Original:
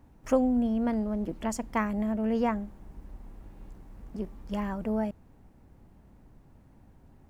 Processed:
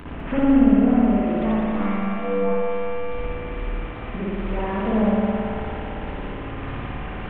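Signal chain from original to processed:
linear delta modulator 16 kbit/s, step −40.5 dBFS
treble cut that deepens with the level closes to 1,500 Hz, closed at −23.5 dBFS
in parallel at +3 dB: downward compressor, threshold −40 dBFS, peak gain reduction 16.5 dB
on the sum: tape wow and flutter 140 cents
0:01.53–0:03.12: phases set to zero 97.8 Hz
on a send: feedback echo with a high-pass in the loop 202 ms, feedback 81%, high-pass 380 Hz, level −6 dB
on the sum: spring reverb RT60 1.9 s, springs 55 ms, chirp 55 ms, DRR −7 dB

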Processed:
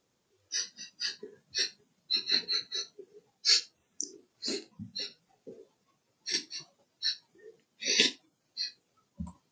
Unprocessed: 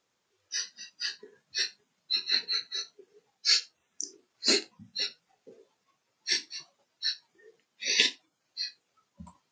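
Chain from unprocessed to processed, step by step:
high-shelf EQ 2,700 Hz +11 dB
0:04.03–0:06.34: downward compressor 6 to 1, threshold −26 dBFS, peak gain reduction 13 dB
tilt shelving filter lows +9 dB, about 740 Hz

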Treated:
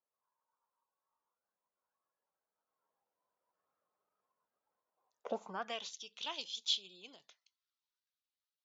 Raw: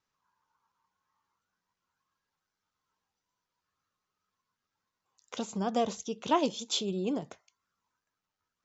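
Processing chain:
source passing by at 0:03.96, 10 m/s, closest 11 metres
band-pass filter sweep 610 Hz → 3,800 Hz, 0:05.34–0:05.86
level +9 dB

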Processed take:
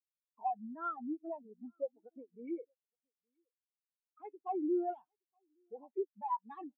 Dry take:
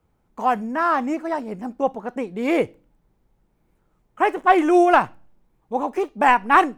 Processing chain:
soft clipping −20 dBFS, distortion −6 dB
parametric band 1,000 Hz −7.5 dB 1.9 octaves
downward compressor 8 to 1, threshold −40 dBFS, peak gain reduction 16 dB
mid-hump overdrive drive 32 dB, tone 3,000 Hz, clips at −14.5 dBFS
first-order pre-emphasis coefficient 0.8
harmonic generator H 5 −24 dB, 7 −20 dB, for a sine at −26 dBFS
on a send: single-tap delay 870 ms −10.5 dB
on the sum: every bin expanded away from the loudest bin 4 to 1
level +1 dB

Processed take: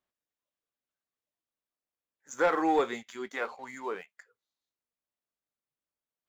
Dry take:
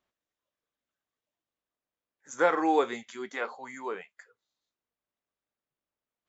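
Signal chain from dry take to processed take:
leveller curve on the samples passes 1
level −4 dB

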